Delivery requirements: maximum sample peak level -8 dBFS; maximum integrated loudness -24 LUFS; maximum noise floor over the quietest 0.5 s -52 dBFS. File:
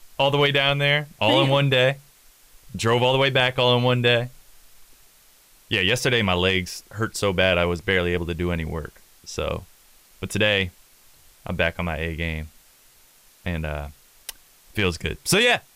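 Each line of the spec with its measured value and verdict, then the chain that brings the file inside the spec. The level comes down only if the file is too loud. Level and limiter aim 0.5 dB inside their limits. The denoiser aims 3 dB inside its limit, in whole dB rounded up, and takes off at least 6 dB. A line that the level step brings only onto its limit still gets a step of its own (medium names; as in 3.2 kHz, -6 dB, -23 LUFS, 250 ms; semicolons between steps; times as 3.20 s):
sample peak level -5.0 dBFS: fail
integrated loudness -21.5 LUFS: fail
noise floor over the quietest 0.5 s -55 dBFS: pass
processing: trim -3 dB; peak limiter -8.5 dBFS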